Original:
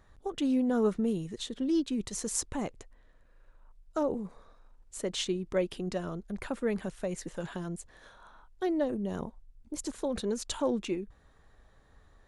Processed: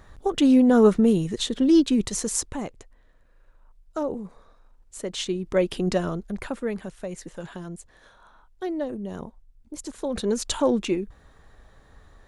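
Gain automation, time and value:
1.95 s +11 dB
2.65 s +2 dB
5.13 s +2 dB
5.9 s +11 dB
6.81 s +0.5 dB
9.89 s +0.5 dB
10.33 s +8 dB

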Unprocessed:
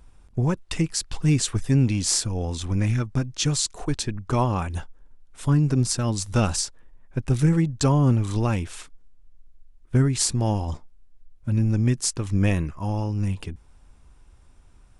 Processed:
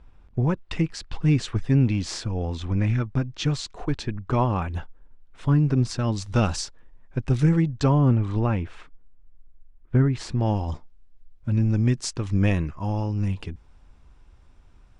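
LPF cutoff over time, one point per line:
5.65 s 3300 Hz
6.6 s 5200 Hz
7.43 s 5200 Hz
8.3 s 2200 Hz
10.17 s 2200 Hz
10.69 s 5200 Hz

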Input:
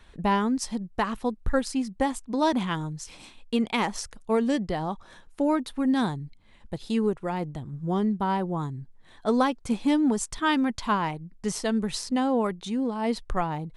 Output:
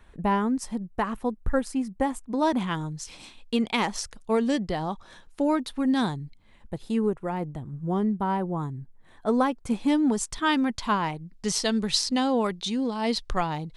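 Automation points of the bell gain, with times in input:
bell 4400 Hz 1.5 oct
2.21 s -8.5 dB
3.03 s +3 dB
6.19 s +3 dB
6.82 s -8 dB
9.39 s -8 dB
10.1 s +2 dB
11.11 s +2 dB
11.57 s +10.5 dB

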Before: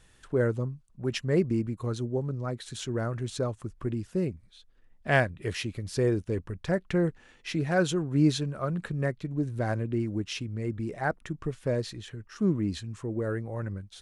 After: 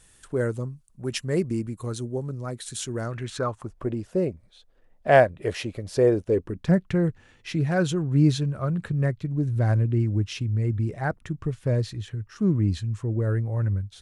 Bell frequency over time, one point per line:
bell +12 dB 1.2 oct
2.98 s 9500 Hz
3.23 s 2000 Hz
3.79 s 600 Hz
6.25 s 600 Hz
6.95 s 100 Hz

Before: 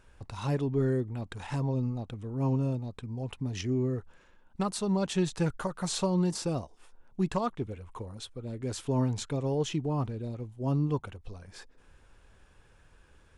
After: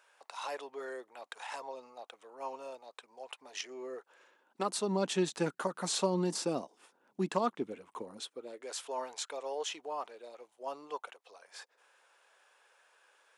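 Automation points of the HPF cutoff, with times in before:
HPF 24 dB/oct
3.65 s 580 Hz
4.97 s 220 Hz
8.16 s 220 Hz
8.71 s 550 Hz

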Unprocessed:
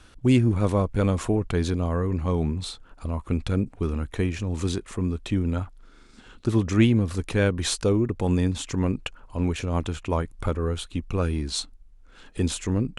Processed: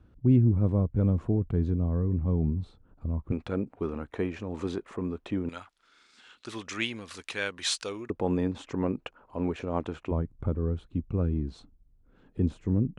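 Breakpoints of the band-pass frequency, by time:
band-pass, Q 0.61
120 Hz
from 3.32 s 650 Hz
from 5.49 s 3200 Hz
from 8.1 s 560 Hz
from 10.11 s 150 Hz

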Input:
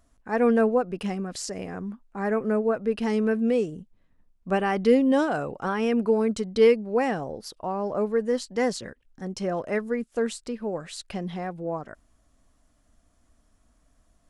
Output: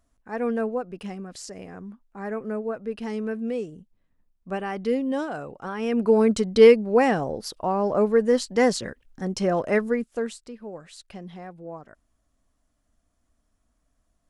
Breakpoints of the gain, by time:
5.71 s -5.5 dB
6.18 s +5 dB
9.85 s +5 dB
10.49 s -7.5 dB

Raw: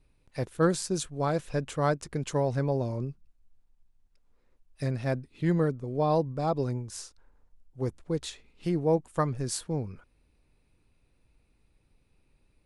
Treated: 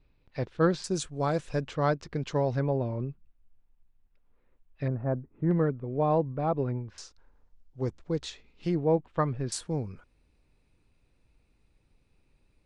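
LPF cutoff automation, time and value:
LPF 24 dB/oct
4700 Hz
from 0.84 s 8500 Hz
from 1.68 s 5400 Hz
from 2.6 s 3300 Hz
from 4.88 s 1300 Hz
from 5.51 s 2800 Hz
from 6.98 s 6600 Hz
from 8.75 s 3700 Hz
from 9.52 s 9000 Hz

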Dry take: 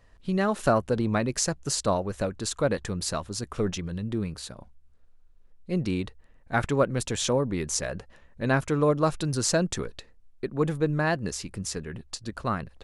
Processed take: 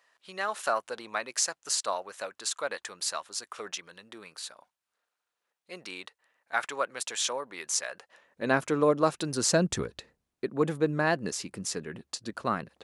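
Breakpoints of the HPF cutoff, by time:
7.96 s 890 Hz
8.52 s 240 Hz
9.35 s 240 Hz
9.72 s 59 Hz
10.48 s 200 Hz

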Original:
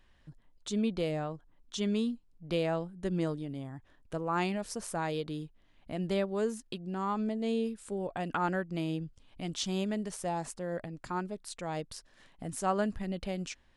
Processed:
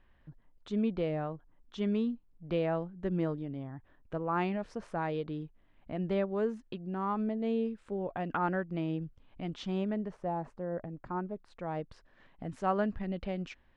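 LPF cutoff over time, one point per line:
9.71 s 2200 Hz
10.24 s 1200 Hz
11.17 s 1200 Hz
12.47 s 2600 Hz

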